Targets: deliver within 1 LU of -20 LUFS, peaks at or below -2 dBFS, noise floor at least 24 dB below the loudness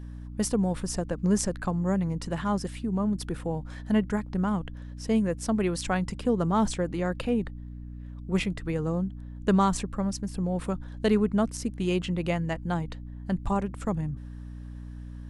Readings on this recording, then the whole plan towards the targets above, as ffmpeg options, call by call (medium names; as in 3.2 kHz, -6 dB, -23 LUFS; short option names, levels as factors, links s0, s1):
hum 60 Hz; highest harmonic 300 Hz; hum level -37 dBFS; loudness -28.5 LUFS; peak level -11.0 dBFS; loudness target -20.0 LUFS
-> -af "bandreject=f=60:t=h:w=4,bandreject=f=120:t=h:w=4,bandreject=f=180:t=h:w=4,bandreject=f=240:t=h:w=4,bandreject=f=300:t=h:w=4"
-af "volume=2.66"